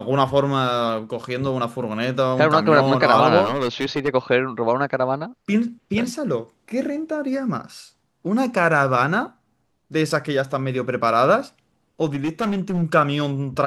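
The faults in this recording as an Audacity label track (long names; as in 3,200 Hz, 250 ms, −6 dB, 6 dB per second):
3.440000	4.090000	clipping −17 dBFS
10.100000	10.100000	drop-out 3.7 ms
12.050000	12.830000	clipping −18.5 dBFS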